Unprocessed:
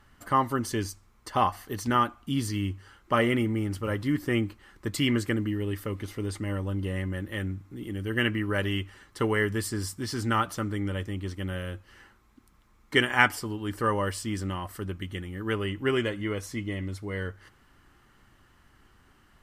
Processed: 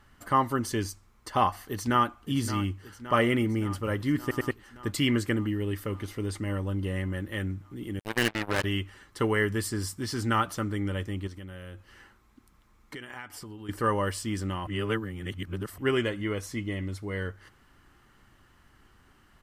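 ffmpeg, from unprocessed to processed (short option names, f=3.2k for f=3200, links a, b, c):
-filter_complex "[0:a]asplit=2[a][b];[b]afade=t=in:st=1.65:d=0.01,afade=t=out:st=2.16:d=0.01,aecho=0:1:570|1140|1710|2280|2850|3420|3990|4560|5130|5700:0.251189|0.175832|0.123082|0.0861577|0.0603104|0.0422173|0.0295521|0.0206865|0.0144805|0.0101364[c];[a][c]amix=inputs=2:normalize=0,asettb=1/sr,asplit=3[d][e][f];[d]atrim=end=7.994[g];[e]atrim=start=7.99:end=8.64,asetpts=PTS-STARTPTS,afade=t=in:d=0.004:c=qsin,afade=t=out:st=0.646:d=0.004:c=qsin,acrusher=bits=3:mix=0:aa=0.5[h];[f]atrim=start=8.636[i];[g][h]acrossfade=d=0.004:c1=hsin:c2=qsin[j];[j][i]acrossfade=d=0.004:c1=qsin:c2=hsin,asettb=1/sr,asplit=3[k][l][m];[k]atrim=end=11.274[n];[l]atrim=start=11.27:end=13.69,asetpts=PTS-STARTPTS,afade=t=in:d=0.004:c=qsin,afade=t=out:st=2.416:d=0.004:c=qsin,acompressor=threshold=-39dB:ratio=6:attack=3.2:release=140:knee=1:detection=peak[o];[m]atrim=start=13.686[p];[n][o]acrossfade=d=0.004:c1=hsin:c2=qsin[q];[q][p]acrossfade=d=0.004:c1=qsin:c2=hsin,asplit=6[r][s][t][u][v][w];[r]atrim=end=4.312[x];[s]atrim=start=4.208:end=4.312[y];[t]atrim=start=4.208:end=4.312[z];[u]atrim=start=4.508:end=14.672[aa];[v]atrim=start=14.668:end=15.782,asetpts=PTS-STARTPTS,areverse[ab];[w]atrim=start=15.778[ac];[x][y]acrossfade=d=0.004:c1=hsin:c2=hsin[ad];[ad][z]acrossfade=d=0.004:c1=hsin:c2=hsin[ae];[ae][aa]acrossfade=d=0.004:c1=hsin:c2=hsin[af];[af][ab]acrossfade=d=0.004:c1=hsin:c2=hsin[ag];[ag][ac]acrossfade=d=0.004:c1=hsin:c2=hsin"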